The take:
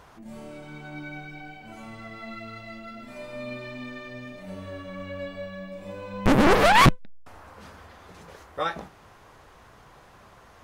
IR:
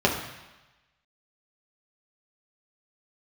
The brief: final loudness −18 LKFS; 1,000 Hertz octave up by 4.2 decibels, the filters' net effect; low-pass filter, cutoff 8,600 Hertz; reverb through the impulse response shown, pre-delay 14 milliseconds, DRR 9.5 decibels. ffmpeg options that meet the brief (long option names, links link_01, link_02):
-filter_complex "[0:a]lowpass=8600,equalizer=frequency=1000:width_type=o:gain=5,asplit=2[link_01][link_02];[1:a]atrim=start_sample=2205,adelay=14[link_03];[link_02][link_03]afir=irnorm=-1:irlink=0,volume=-26dB[link_04];[link_01][link_04]amix=inputs=2:normalize=0,volume=1.5dB"